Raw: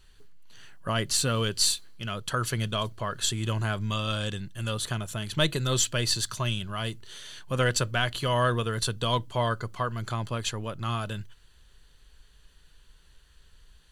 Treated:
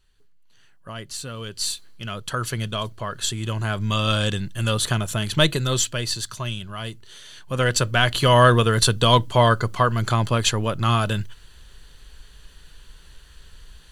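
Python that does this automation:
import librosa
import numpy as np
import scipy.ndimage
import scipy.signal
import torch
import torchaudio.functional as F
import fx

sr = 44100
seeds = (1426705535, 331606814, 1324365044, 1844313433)

y = fx.gain(x, sr, db=fx.line((1.37, -7.5), (1.9, 2.0), (3.55, 2.0), (4.07, 8.5), (5.25, 8.5), (6.09, 0.0), (7.29, 0.0), (8.25, 10.5)))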